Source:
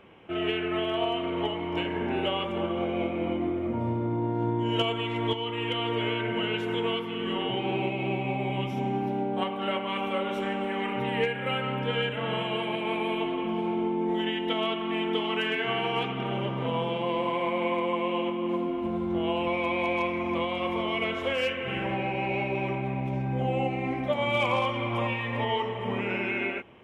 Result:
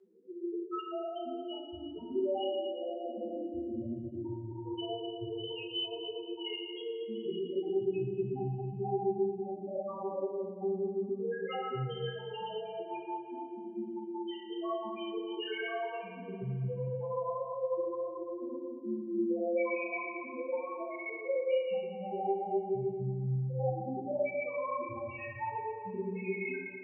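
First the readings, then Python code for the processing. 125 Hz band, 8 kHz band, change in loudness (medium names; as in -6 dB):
-6.5 dB, no reading, -7.5 dB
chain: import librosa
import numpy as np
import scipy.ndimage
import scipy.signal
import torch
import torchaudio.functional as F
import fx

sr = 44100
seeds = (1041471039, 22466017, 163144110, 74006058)

p1 = fx.high_shelf(x, sr, hz=2200.0, db=5.0)
p2 = np.clip(p1, -10.0 ** (-21.5 / 20.0), 10.0 ** (-21.5 / 20.0))
p3 = fx.chorus_voices(p2, sr, voices=6, hz=1.1, base_ms=13, depth_ms=3.0, mix_pct=35)
p4 = fx.spec_topn(p3, sr, count=1)
p5 = fx.rotary(p4, sr, hz=1.2)
p6 = p5 + fx.echo_heads(p5, sr, ms=114, heads='first and second', feedback_pct=48, wet_db=-12, dry=0)
y = fx.rev_double_slope(p6, sr, seeds[0], early_s=0.91, late_s=2.7, knee_db=-18, drr_db=-5.5)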